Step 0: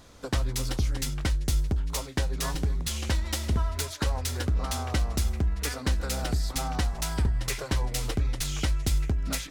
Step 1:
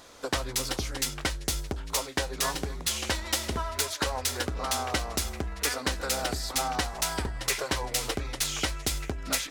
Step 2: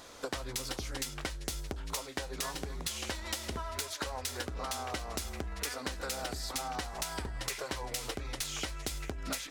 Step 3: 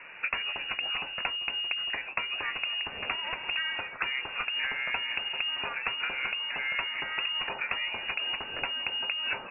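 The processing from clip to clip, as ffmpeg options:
-af "bass=f=250:g=-14,treble=f=4k:g=0,volume=4.5dB"
-af "acompressor=threshold=-34dB:ratio=6"
-af "lowpass=f=2.5k:t=q:w=0.5098,lowpass=f=2.5k:t=q:w=0.6013,lowpass=f=2.5k:t=q:w=0.9,lowpass=f=2.5k:t=q:w=2.563,afreqshift=-2900,volume=6.5dB"

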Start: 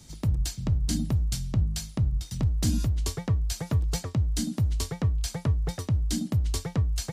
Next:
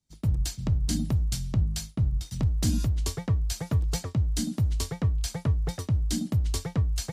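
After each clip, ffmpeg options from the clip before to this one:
-af "agate=range=-33dB:threshold=-33dB:ratio=3:detection=peak"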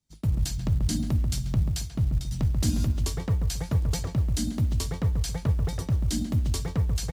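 -filter_complex "[0:a]asplit=2[a][b];[b]adelay=137,lowpass=f=1.4k:p=1,volume=-6dB,asplit=2[c][d];[d]adelay=137,lowpass=f=1.4k:p=1,volume=0.33,asplit=2[e][f];[f]adelay=137,lowpass=f=1.4k:p=1,volume=0.33,asplit=2[g][h];[h]adelay=137,lowpass=f=1.4k:p=1,volume=0.33[i];[a][c][e][g][i]amix=inputs=5:normalize=0,acrusher=bits=9:mode=log:mix=0:aa=0.000001"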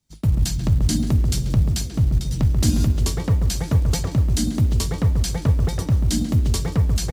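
-filter_complex "[0:a]asplit=5[a][b][c][d][e];[b]adelay=181,afreqshift=100,volume=-20.5dB[f];[c]adelay=362,afreqshift=200,volume=-26.3dB[g];[d]adelay=543,afreqshift=300,volume=-32.2dB[h];[e]adelay=724,afreqshift=400,volume=-38dB[i];[a][f][g][h][i]amix=inputs=5:normalize=0,volume=6.5dB"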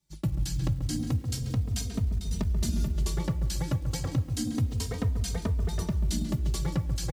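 -filter_complex "[0:a]acompressor=threshold=-22dB:ratio=6,asplit=2[a][b];[b]adelay=3,afreqshift=-0.31[c];[a][c]amix=inputs=2:normalize=1"

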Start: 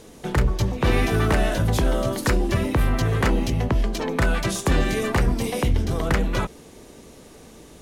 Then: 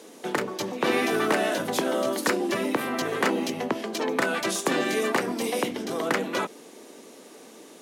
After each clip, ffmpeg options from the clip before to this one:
-af "highpass=f=240:w=0.5412,highpass=f=240:w=1.3066"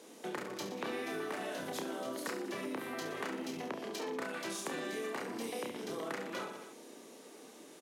-filter_complex "[0:a]asplit=2[a][b];[b]aecho=0:1:30|69|119.7|185.6|271.3:0.631|0.398|0.251|0.158|0.1[c];[a][c]amix=inputs=2:normalize=0,acompressor=threshold=-29dB:ratio=4,volume=-8.5dB"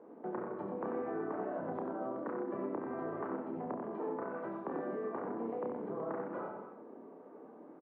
-filter_complex "[0:a]lowpass=f=1.2k:w=0.5412,lowpass=f=1.2k:w=1.3066,asplit=2[a][b];[b]aecho=0:1:91|239:0.562|0.126[c];[a][c]amix=inputs=2:normalize=0,volume=1dB"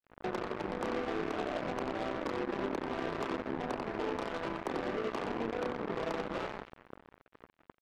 -af "acompressor=threshold=-46dB:ratio=2,acrusher=bits=6:mix=0:aa=0.5,volume=8.5dB"

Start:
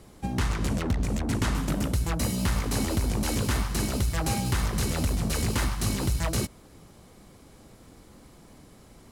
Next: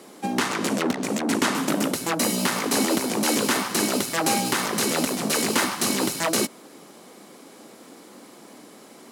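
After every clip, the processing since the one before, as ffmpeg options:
-af "highpass=f=230:w=0.5412,highpass=f=230:w=1.3066,volume=8.5dB"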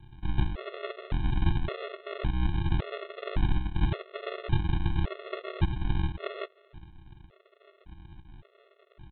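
-af "aresample=8000,acrusher=samples=32:mix=1:aa=0.000001,aresample=44100,afftfilt=real='re*gt(sin(2*PI*0.89*pts/sr)*(1-2*mod(floor(b*sr/1024/360),2)),0)':imag='im*gt(sin(2*PI*0.89*pts/sr)*(1-2*mod(floor(b*sr/1024/360),2)),0)':win_size=1024:overlap=0.75"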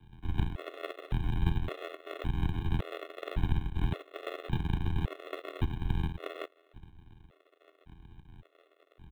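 -filter_complex "[0:a]tremolo=f=84:d=0.889,acrossover=split=180|900[a][b][c];[c]acrusher=bits=4:mode=log:mix=0:aa=0.000001[d];[a][b][d]amix=inputs=3:normalize=0"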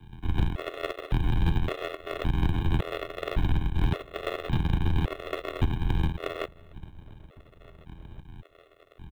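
-filter_complex "[0:a]asoftclip=type=tanh:threshold=-21.5dB,asplit=2[a][b];[b]adelay=1749,volume=-27dB,highshelf=f=4k:g=-39.4[c];[a][c]amix=inputs=2:normalize=0,aeval=exprs='0.0841*(cos(1*acos(clip(val(0)/0.0841,-1,1)))-cos(1*PI/2))+0.00299*(cos(8*acos(clip(val(0)/0.0841,-1,1)))-cos(8*PI/2))':c=same,volume=7.5dB"

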